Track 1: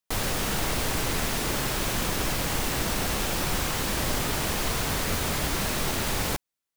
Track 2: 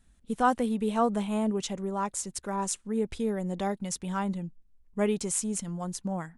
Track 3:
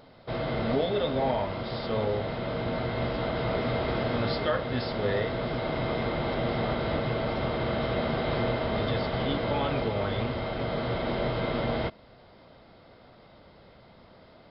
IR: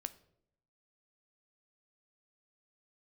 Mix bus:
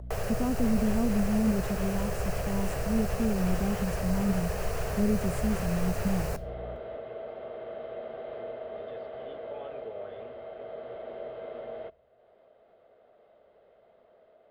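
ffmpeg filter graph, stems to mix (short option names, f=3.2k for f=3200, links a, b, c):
-filter_complex "[0:a]aeval=exprs='val(0)+0.0141*(sin(2*PI*60*n/s)+sin(2*PI*2*60*n/s)/2+sin(2*PI*3*60*n/s)/3+sin(2*PI*4*60*n/s)/4+sin(2*PI*5*60*n/s)/5)':c=same,volume=2dB,asplit=2[a][b];[b]volume=-12.5dB[c];[1:a]tiltshelf=f=970:g=8.5,volume=-10.5dB[d];[2:a]volume=-14dB,asplit=2[e][f];[f]volume=-21.5dB[g];[a][e]amix=inputs=2:normalize=0,highpass=f=300:w=0.5412,highpass=f=300:w=1.3066,equalizer=f=300:t=q:w=4:g=-10,equalizer=f=440:t=q:w=4:g=5,equalizer=f=640:t=q:w=4:g=8,equalizer=f=960:t=q:w=4:g=-8,equalizer=f=1.4k:t=q:w=4:g=-3,equalizer=f=2.2k:t=q:w=4:g=-6,lowpass=f=2.9k:w=0.5412,lowpass=f=2.9k:w=1.3066,alimiter=level_in=1.5dB:limit=-24dB:level=0:latency=1:release=177,volume=-1.5dB,volume=0dB[h];[3:a]atrim=start_sample=2205[i];[c][g]amix=inputs=2:normalize=0[j];[j][i]afir=irnorm=-1:irlink=0[k];[d][h][k]amix=inputs=3:normalize=0,acrossover=split=410|3000[l][m][n];[m]acompressor=threshold=-37dB:ratio=6[o];[l][o][n]amix=inputs=3:normalize=0,lowshelf=f=220:g=12,acompressor=mode=upward:threshold=-53dB:ratio=2.5"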